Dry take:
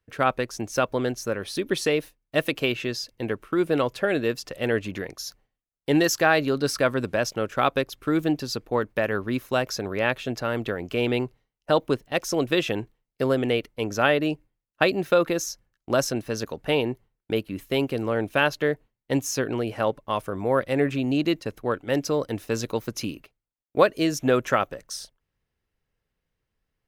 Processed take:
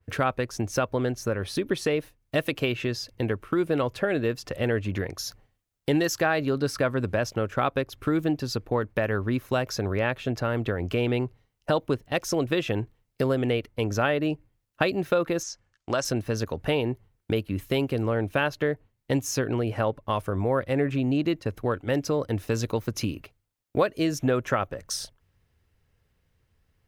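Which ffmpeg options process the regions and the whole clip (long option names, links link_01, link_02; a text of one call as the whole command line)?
ffmpeg -i in.wav -filter_complex "[0:a]asettb=1/sr,asplit=3[link_01][link_02][link_03];[link_01]atrim=end=15.434[link_04];[link_02]atrim=start=15.43:end=16.05,asetpts=PTS-STARTPTS,afade=type=in:duration=0.004:curve=qsin,afade=type=out:start_time=0.616:duration=0.004:curve=qsin,lowpass=frequency=8300:width=0.5412,lowpass=frequency=8300:width=1.3066,lowshelf=frequency=460:gain=-11,bandreject=frequency=3900:width=25[link_05];[link_03]atrim=start=16.046[link_06];[link_04][link_05]acrossfade=duration=0.004:curve1=hsin:curve2=qsin[link_07];[link_07][link_06]acrossfade=duration=0.004:curve1=qsin:curve2=hsin,equalizer=frequency=87:width=1.5:gain=10.5,acompressor=threshold=-38dB:ratio=2,adynamicequalizer=threshold=0.00251:dfrequency=2700:dqfactor=0.7:tfrequency=2700:tqfactor=0.7:attack=5:release=100:ratio=0.375:range=3:mode=cutabove:tftype=highshelf,volume=8dB" out.wav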